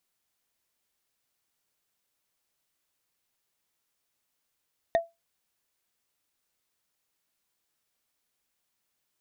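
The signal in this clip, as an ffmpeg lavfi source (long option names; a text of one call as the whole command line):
ffmpeg -f lavfi -i "aevalsrc='0.158*pow(10,-3*t/0.2)*sin(2*PI*671*t)+0.0562*pow(10,-3*t/0.059)*sin(2*PI*1849.9*t)+0.02*pow(10,-3*t/0.026)*sin(2*PI*3626.1*t)+0.00708*pow(10,-3*t/0.014)*sin(2*PI*5994*t)+0.00251*pow(10,-3*t/0.009)*sin(2*PI*8951.1*t)':duration=0.45:sample_rate=44100" out.wav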